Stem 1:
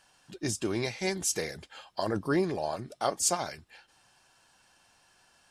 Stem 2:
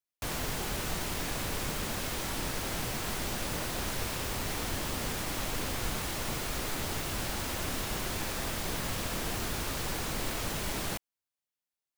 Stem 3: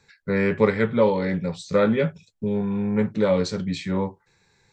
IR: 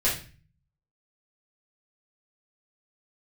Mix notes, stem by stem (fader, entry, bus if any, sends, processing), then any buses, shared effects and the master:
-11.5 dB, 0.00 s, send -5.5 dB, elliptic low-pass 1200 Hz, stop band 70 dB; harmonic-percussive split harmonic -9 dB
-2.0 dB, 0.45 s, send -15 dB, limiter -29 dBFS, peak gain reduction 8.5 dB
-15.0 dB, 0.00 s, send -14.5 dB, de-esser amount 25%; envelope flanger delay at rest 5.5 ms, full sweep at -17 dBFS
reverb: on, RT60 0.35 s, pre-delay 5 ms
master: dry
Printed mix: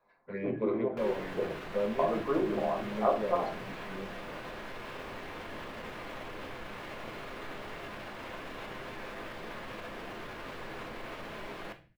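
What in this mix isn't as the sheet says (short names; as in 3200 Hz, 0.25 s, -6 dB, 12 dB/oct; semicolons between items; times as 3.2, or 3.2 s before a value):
stem 1 -11.5 dB -> -3.0 dB; stem 2: entry 0.45 s -> 0.75 s; master: extra three-band isolator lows -14 dB, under 200 Hz, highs -22 dB, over 3100 Hz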